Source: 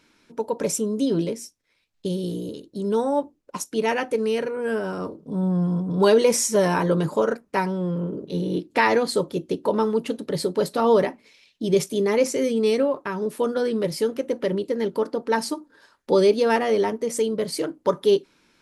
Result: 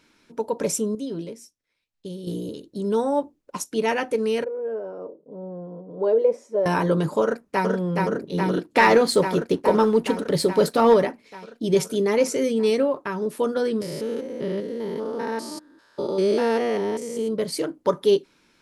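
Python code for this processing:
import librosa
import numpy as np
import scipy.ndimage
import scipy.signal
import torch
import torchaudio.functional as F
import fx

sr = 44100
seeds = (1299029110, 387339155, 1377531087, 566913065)

y = fx.bandpass_q(x, sr, hz=520.0, q=2.8, at=(4.44, 6.66))
y = fx.echo_throw(y, sr, start_s=7.22, length_s=0.45, ms=420, feedback_pct=80, wet_db=-2.5)
y = fx.leveller(y, sr, passes=1, at=(8.63, 10.94))
y = fx.spec_steps(y, sr, hold_ms=200, at=(13.8, 17.27), fade=0.02)
y = fx.edit(y, sr, fx.clip_gain(start_s=0.95, length_s=1.32, db=-8.5), tone=tone)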